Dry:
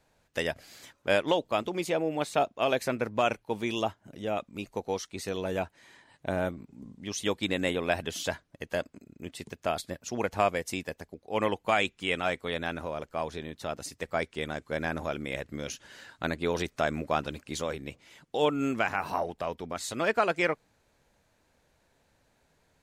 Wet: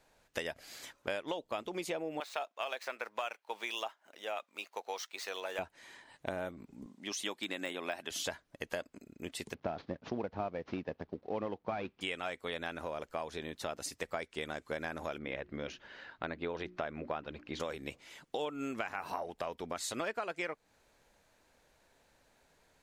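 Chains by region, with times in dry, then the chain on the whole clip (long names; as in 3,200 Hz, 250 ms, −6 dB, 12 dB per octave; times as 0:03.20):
0:02.20–0:05.59: running median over 5 samples + high-pass filter 770 Hz
0:06.86–0:08.11: high-pass filter 250 Hz + parametric band 470 Hz −8.5 dB 0.31 octaves + de-essing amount 80%
0:09.54–0:12.01: variable-slope delta modulation 32 kbit/s + band-pass filter 130–5,000 Hz + spectral tilt −4 dB per octave
0:15.18–0:17.60: high-frequency loss of the air 260 metres + mains-hum notches 60/120/180/240/300/360 Hz
whole clip: parametric band 110 Hz −7.5 dB 2.3 octaves; downward compressor 6 to 1, threshold −36 dBFS; level +1.5 dB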